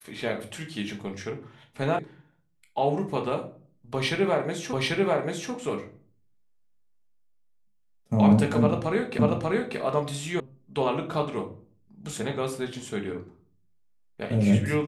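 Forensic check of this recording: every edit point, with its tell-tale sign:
1.99 s: sound stops dead
4.73 s: repeat of the last 0.79 s
9.19 s: repeat of the last 0.59 s
10.40 s: sound stops dead

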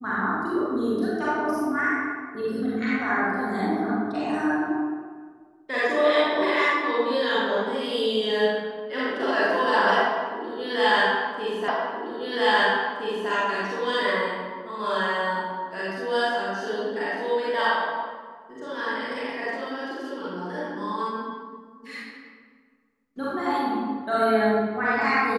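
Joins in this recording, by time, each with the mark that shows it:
11.68 s: repeat of the last 1.62 s

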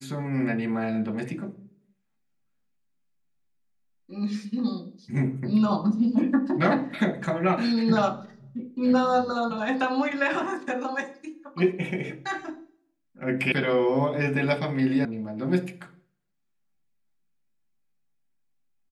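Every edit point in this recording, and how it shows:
13.52 s: sound stops dead
15.05 s: sound stops dead

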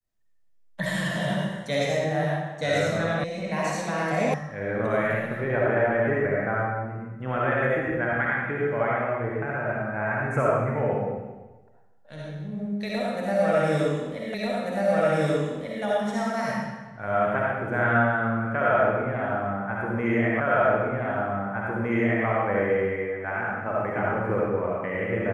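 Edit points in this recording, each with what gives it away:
3.24 s: sound stops dead
4.34 s: sound stops dead
14.34 s: repeat of the last 1.49 s
20.40 s: repeat of the last 1.86 s

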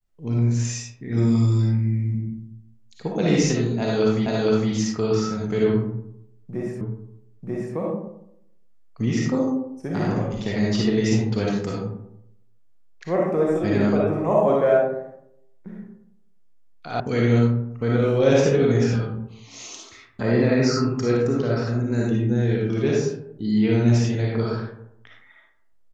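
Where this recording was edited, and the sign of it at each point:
4.26 s: repeat of the last 0.46 s
6.81 s: repeat of the last 0.94 s
17.00 s: sound stops dead

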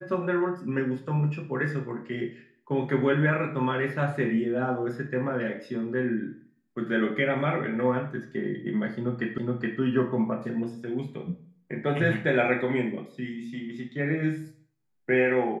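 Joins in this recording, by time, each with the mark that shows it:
9.38 s: repeat of the last 0.42 s

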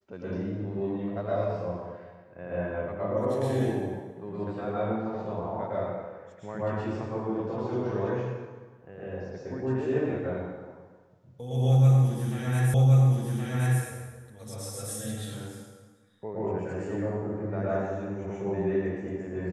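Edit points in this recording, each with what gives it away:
12.74 s: repeat of the last 1.07 s

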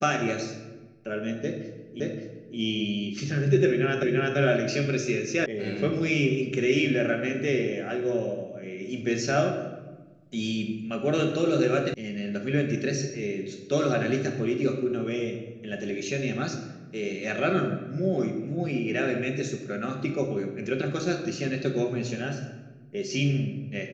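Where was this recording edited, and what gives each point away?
2.00 s: repeat of the last 0.57 s
4.03 s: repeat of the last 0.34 s
5.46 s: sound stops dead
11.94 s: sound stops dead

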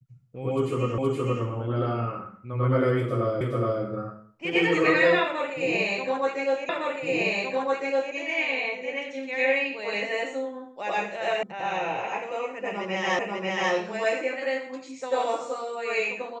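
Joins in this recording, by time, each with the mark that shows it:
0.98 s: repeat of the last 0.47 s
3.41 s: repeat of the last 0.42 s
6.69 s: repeat of the last 1.46 s
11.43 s: sound stops dead
13.19 s: repeat of the last 0.54 s

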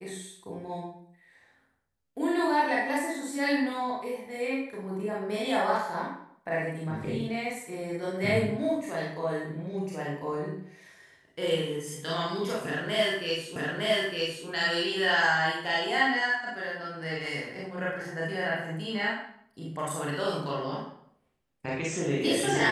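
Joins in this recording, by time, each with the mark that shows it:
13.56 s: repeat of the last 0.91 s

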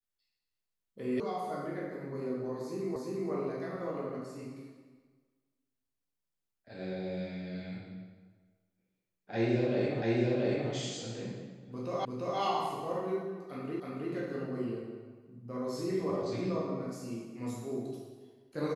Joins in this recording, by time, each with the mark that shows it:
1.20 s: sound stops dead
2.96 s: repeat of the last 0.35 s
10.02 s: repeat of the last 0.68 s
12.05 s: repeat of the last 0.34 s
13.80 s: repeat of the last 0.32 s

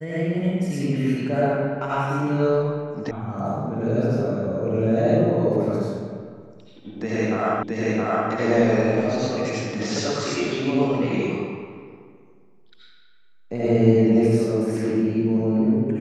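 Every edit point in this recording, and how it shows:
3.11 s: sound stops dead
7.63 s: repeat of the last 0.67 s

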